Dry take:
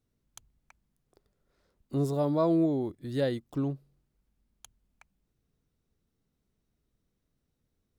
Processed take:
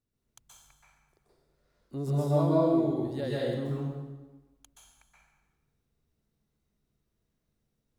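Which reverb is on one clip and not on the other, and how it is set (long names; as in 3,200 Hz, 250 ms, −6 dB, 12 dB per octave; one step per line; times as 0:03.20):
dense smooth reverb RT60 1.2 s, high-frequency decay 0.85×, pre-delay 115 ms, DRR −7 dB
level −7 dB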